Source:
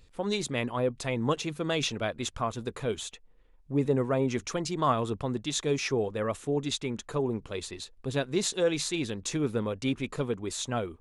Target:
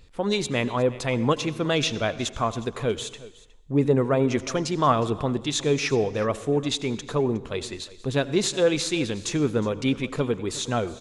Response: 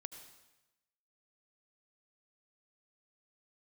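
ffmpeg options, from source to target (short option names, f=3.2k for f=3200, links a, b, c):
-filter_complex "[0:a]aecho=1:1:363:0.106,asplit=2[a][b];[1:a]atrim=start_sample=2205,afade=t=out:st=0.43:d=0.01,atrim=end_sample=19404,lowpass=7.7k[c];[b][c]afir=irnorm=-1:irlink=0,volume=-1dB[d];[a][d]amix=inputs=2:normalize=0,volume=2dB"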